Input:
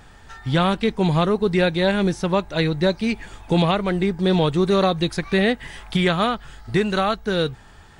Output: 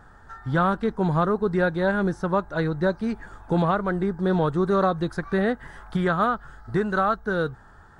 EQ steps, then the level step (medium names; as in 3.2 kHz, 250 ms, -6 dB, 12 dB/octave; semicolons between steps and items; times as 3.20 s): resonant high shelf 1.9 kHz -8.5 dB, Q 3; -4.0 dB